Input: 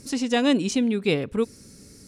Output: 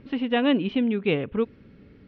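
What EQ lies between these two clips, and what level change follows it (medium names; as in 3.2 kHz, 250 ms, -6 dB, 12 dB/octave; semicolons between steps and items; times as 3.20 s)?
elliptic low-pass 3.2 kHz, stop band 60 dB; 0.0 dB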